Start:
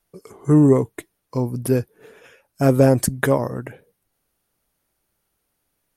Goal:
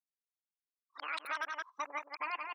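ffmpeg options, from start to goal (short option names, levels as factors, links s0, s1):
-filter_complex "[0:a]areverse,afftfilt=real='re*lt(hypot(re,im),1.58)':imag='im*lt(hypot(re,im),1.58)':win_size=1024:overlap=0.75,asoftclip=type=tanh:threshold=0.237,lowpass=2400,equalizer=f=1600:t=o:w=0.58:g=-10,afftdn=nr=33:nf=-40,highpass=990,asetrate=103194,aresample=44100,asplit=2[s0][s1];[s1]aecho=0:1:172:0.422[s2];[s0][s2]amix=inputs=2:normalize=0,alimiter=level_in=2.66:limit=0.0631:level=0:latency=1:release=380,volume=0.376,volume=1.88"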